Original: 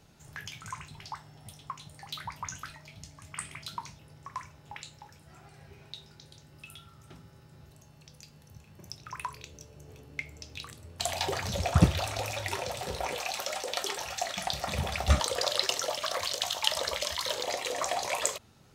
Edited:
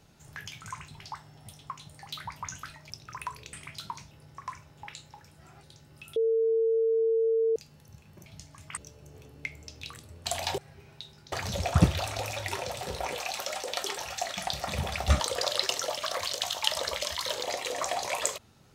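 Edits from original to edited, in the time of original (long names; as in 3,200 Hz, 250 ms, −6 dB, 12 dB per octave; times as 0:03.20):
0:02.90–0:03.41: swap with 0:08.88–0:09.51
0:05.51–0:06.25: move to 0:11.32
0:06.78–0:08.18: beep over 451 Hz −22 dBFS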